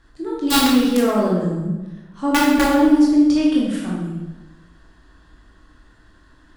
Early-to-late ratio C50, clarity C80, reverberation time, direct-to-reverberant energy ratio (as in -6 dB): 0.0 dB, 3.0 dB, 1.1 s, -5.0 dB